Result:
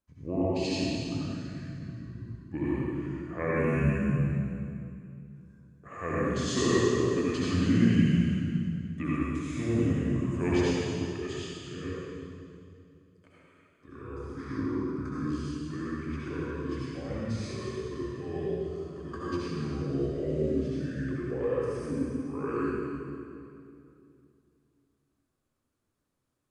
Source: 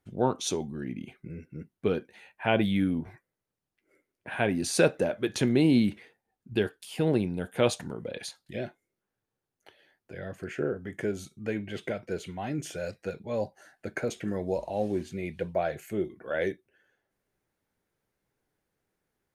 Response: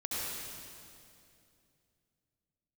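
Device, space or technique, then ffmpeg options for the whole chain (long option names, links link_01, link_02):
slowed and reverbed: -filter_complex "[0:a]asetrate=32193,aresample=44100[link_01];[1:a]atrim=start_sample=2205[link_02];[link_01][link_02]afir=irnorm=-1:irlink=0,volume=-6dB"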